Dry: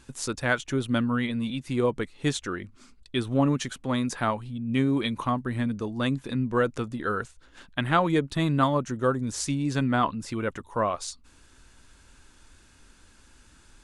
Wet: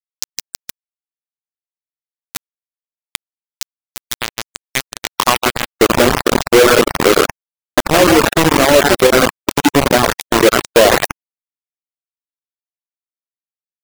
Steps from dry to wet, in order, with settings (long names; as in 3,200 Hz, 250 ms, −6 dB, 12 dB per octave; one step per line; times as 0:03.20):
hollow resonant body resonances 350/2,000/3,500 Hz, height 10 dB, ringing for 30 ms
downward compressor 4 to 1, threshold −33 dBFS, peak gain reduction 17 dB
echo with a time of its own for lows and highs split 610 Hz, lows 86 ms, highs 162 ms, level −4 dB
band-pass filter sweep 5,900 Hz → 580 Hz, 0:03.76–0:05.75
dynamic equaliser 1,000 Hz, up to −5 dB, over −56 dBFS, Q 1.8
automatic gain control gain up to 9 dB
high-shelf EQ 9,900 Hz −7 dB
bit reduction 5 bits
reverb reduction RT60 0.62 s
boost into a limiter +31.5 dB
level −1.5 dB